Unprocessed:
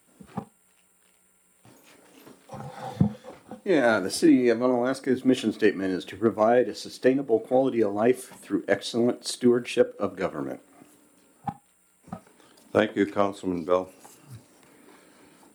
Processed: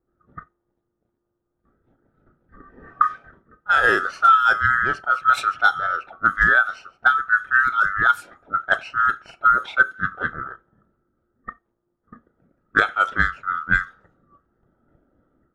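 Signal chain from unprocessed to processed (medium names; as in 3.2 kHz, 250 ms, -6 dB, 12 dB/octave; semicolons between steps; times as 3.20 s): split-band scrambler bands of 1 kHz; level-controlled noise filter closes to 330 Hz, open at -17 dBFS; trim +4 dB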